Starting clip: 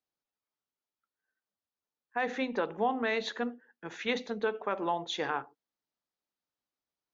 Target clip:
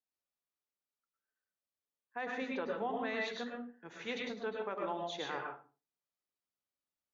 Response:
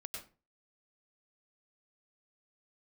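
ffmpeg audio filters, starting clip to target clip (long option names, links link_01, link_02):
-filter_complex "[1:a]atrim=start_sample=2205,afade=type=out:start_time=0.4:duration=0.01,atrim=end_sample=18081,asetrate=40572,aresample=44100[link_01];[0:a][link_01]afir=irnorm=-1:irlink=0,volume=-3.5dB"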